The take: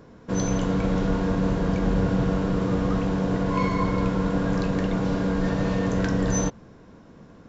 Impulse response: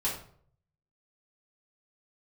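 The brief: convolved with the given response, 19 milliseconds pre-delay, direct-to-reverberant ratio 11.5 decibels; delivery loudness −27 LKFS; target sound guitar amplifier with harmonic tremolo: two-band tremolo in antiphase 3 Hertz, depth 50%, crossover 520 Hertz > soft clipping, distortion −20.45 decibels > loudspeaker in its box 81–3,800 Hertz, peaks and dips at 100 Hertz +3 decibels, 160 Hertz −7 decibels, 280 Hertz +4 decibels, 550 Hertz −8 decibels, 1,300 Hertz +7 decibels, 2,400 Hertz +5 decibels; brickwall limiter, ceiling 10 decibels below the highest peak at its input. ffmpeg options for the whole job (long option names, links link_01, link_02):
-filter_complex "[0:a]alimiter=limit=-21dB:level=0:latency=1,asplit=2[link_01][link_02];[1:a]atrim=start_sample=2205,adelay=19[link_03];[link_02][link_03]afir=irnorm=-1:irlink=0,volume=-18dB[link_04];[link_01][link_04]amix=inputs=2:normalize=0,acrossover=split=520[link_05][link_06];[link_05]aeval=exprs='val(0)*(1-0.5/2+0.5/2*cos(2*PI*3*n/s))':channel_layout=same[link_07];[link_06]aeval=exprs='val(0)*(1-0.5/2-0.5/2*cos(2*PI*3*n/s))':channel_layout=same[link_08];[link_07][link_08]amix=inputs=2:normalize=0,asoftclip=threshold=-23.5dB,highpass=81,equalizer=frequency=100:width_type=q:width=4:gain=3,equalizer=frequency=160:width_type=q:width=4:gain=-7,equalizer=frequency=280:width_type=q:width=4:gain=4,equalizer=frequency=550:width_type=q:width=4:gain=-8,equalizer=frequency=1300:width_type=q:width=4:gain=7,equalizer=frequency=2400:width_type=q:width=4:gain=5,lowpass=frequency=3800:width=0.5412,lowpass=frequency=3800:width=1.3066,volume=7dB"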